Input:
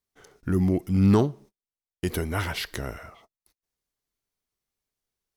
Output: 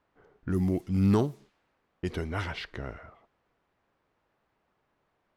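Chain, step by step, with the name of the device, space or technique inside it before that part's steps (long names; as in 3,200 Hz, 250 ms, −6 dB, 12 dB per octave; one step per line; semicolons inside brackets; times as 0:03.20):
cassette deck with a dynamic noise filter (white noise bed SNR 31 dB; low-pass that shuts in the quiet parts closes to 1,200 Hz, open at −19 dBFS)
level −4.5 dB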